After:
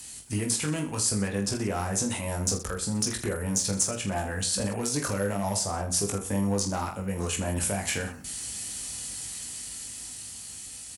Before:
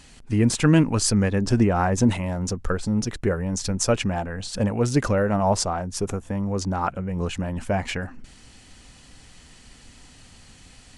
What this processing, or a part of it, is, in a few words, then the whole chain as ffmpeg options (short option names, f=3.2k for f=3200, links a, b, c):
FM broadcast chain: -filter_complex "[0:a]highpass=f=52:w=0.5412,highpass=f=52:w=1.3066,dynaudnorm=f=490:g=9:m=9.5dB,acrossover=split=320|2300|4900[a][b][c][d];[a]acompressor=threshold=-24dB:ratio=4[e];[b]acompressor=threshold=-22dB:ratio=4[f];[c]acompressor=threshold=-41dB:ratio=4[g];[d]acompressor=threshold=-43dB:ratio=4[h];[e][f][g][h]amix=inputs=4:normalize=0,aemphasis=mode=production:type=50fm,alimiter=limit=-15.5dB:level=0:latency=1:release=314,asoftclip=type=hard:threshold=-18dB,lowpass=f=15k:w=0.5412,lowpass=f=15k:w=1.3066,aemphasis=mode=production:type=50fm,aecho=1:1:20|46|79.8|123.7|180.9:0.631|0.398|0.251|0.158|0.1,volume=-5.5dB"